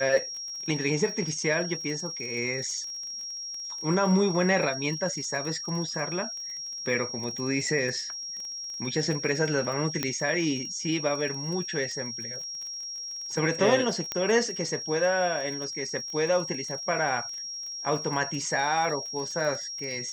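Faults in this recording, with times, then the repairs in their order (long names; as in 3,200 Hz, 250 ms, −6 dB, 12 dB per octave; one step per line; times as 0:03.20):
surface crackle 27 per second −35 dBFS
whistle 5,600 Hz −34 dBFS
0:10.03: click −11 dBFS
0:14.12: click −14 dBFS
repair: click removal
notch filter 5,600 Hz, Q 30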